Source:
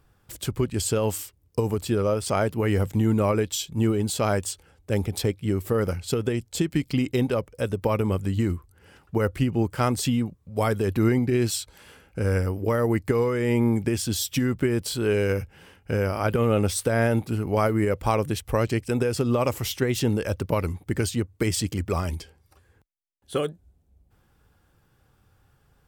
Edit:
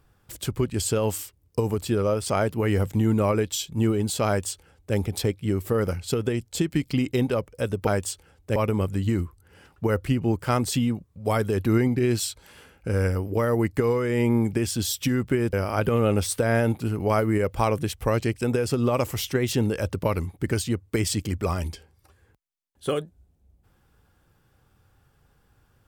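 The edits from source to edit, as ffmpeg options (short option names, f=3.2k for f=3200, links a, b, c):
-filter_complex "[0:a]asplit=4[a][b][c][d];[a]atrim=end=7.872[e];[b]atrim=start=4.268:end=4.962[f];[c]atrim=start=7.868:end=14.842[g];[d]atrim=start=15.998[h];[e][f]acrossfade=d=0.004:c1=hsin:c2=hsin[i];[i][g]acrossfade=d=0.004:c1=hsin:c2=hsin[j];[j][h]acrossfade=d=0.004:c1=hsin:c2=hsin"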